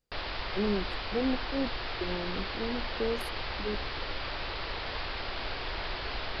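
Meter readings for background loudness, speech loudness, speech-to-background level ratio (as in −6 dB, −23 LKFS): −36.0 LKFS, −35.5 LKFS, 0.5 dB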